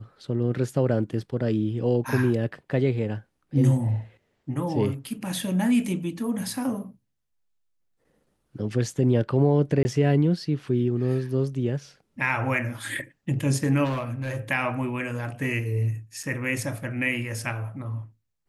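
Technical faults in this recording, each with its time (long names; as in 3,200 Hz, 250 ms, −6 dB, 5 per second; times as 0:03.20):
0:09.83–0:09.85: drop-out 20 ms
0:13.84–0:14.37: clipping −24 dBFS
0:16.23: drop-out 4.3 ms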